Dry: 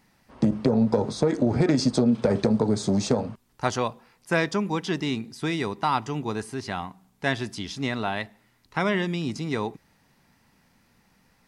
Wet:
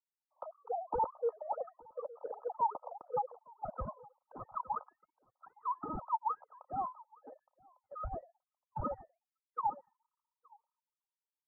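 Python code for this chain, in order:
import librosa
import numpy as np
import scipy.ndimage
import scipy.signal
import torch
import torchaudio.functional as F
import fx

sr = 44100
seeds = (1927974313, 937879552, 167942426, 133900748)

p1 = fx.sine_speech(x, sr)
p2 = scipy.signal.sosfilt(scipy.signal.butter(16, 530.0, 'highpass', fs=sr, output='sos'), p1)
p3 = fx.spec_gate(p2, sr, threshold_db=-10, keep='strong')
p4 = 10.0 ** (-31.0 / 20.0) * (np.abs((p3 / 10.0 ** (-31.0 / 20.0) + 3.0) % 4.0 - 2.0) - 1.0)
p5 = scipy.signal.sosfilt(scipy.signal.cheby1(6, 6, 1300.0, 'lowpass', fs=sr, output='sos'), p4)
p6 = p5 + fx.echo_single(p5, sr, ms=867, db=-14.0, dry=0)
p7 = fx.band_widen(p6, sr, depth_pct=100)
y = F.gain(torch.from_numpy(p7), 4.0).numpy()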